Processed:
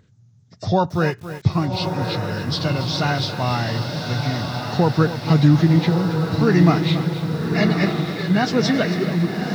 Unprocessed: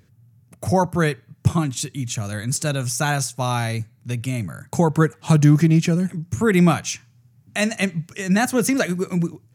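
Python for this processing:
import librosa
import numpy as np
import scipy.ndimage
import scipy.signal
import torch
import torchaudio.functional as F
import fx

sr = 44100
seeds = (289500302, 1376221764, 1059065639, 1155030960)

y = fx.freq_compress(x, sr, knee_hz=1400.0, ratio=1.5)
y = fx.echo_diffused(y, sr, ms=1166, feedback_pct=55, wet_db=-5.0)
y = fx.echo_crushed(y, sr, ms=276, feedback_pct=35, bits=6, wet_db=-12.0)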